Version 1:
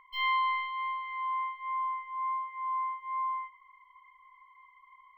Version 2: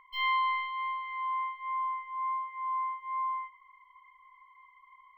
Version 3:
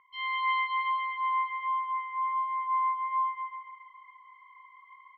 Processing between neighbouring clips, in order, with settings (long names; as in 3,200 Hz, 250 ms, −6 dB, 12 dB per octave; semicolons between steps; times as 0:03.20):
no processing that can be heard
Chebyshev band-pass filter 110–3,400 Hz, order 2; on a send: repeating echo 140 ms, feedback 54%, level −5.5 dB; on the sum: automatic gain control gain up to 8 dB; level −4.5 dB